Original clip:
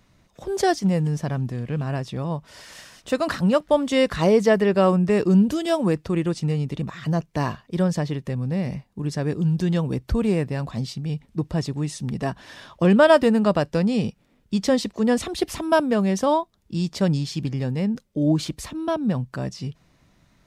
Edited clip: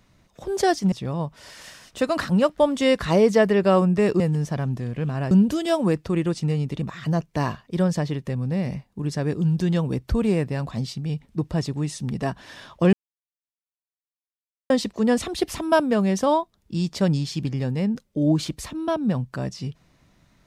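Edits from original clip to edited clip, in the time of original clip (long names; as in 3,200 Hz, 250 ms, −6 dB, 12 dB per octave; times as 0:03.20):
0:00.92–0:02.03: move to 0:05.31
0:12.93–0:14.70: silence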